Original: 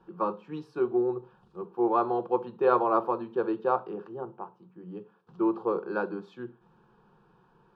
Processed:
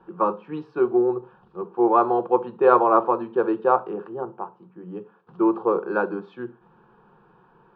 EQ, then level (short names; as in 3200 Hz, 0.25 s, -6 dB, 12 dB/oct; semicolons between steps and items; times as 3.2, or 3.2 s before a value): LPF 2500 Hz 12 dB/oct; low shelf 210 Hz -6.5 dB; +8.0 dB